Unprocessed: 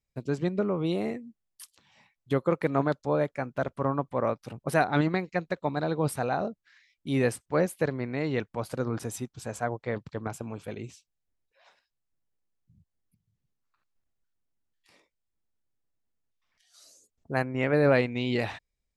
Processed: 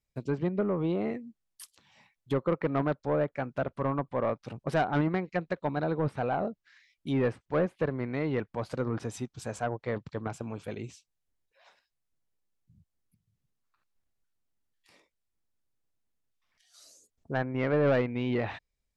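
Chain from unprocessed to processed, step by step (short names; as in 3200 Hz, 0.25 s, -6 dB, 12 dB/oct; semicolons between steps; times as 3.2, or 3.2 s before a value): treble ducked by the level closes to 2100 Hz, closed at -24 dBFS; soft clip -19 dBFS, distortion -15 dB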